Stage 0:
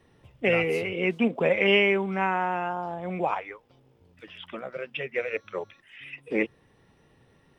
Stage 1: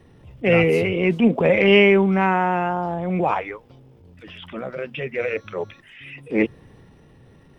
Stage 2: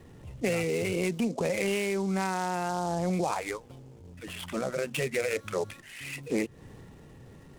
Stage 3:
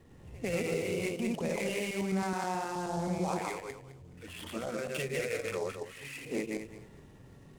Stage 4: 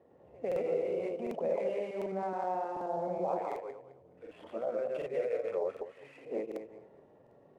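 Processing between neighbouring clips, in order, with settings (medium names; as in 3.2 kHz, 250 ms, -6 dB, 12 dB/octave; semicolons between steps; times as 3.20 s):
bass shelf 390 Hz +9 dB; transient shaper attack -7 dB, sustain +3 dB; trim +4.5 dB
compression 16:1, threshold -25 dBFS, peak gain reduction 17 dB; delay time shaken by noise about 5.7 kHz, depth 0.031 ms
backward echo that repeats 106 ms, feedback 43%, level -0.5 dB; pre-echo 102 ms -21 dB; trim -7 dB
band-pass filter 590 Hz, Q 2.6; crackling interface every 0.75 s, samples 2048, repeat, from 0.47 s; trim +6 dB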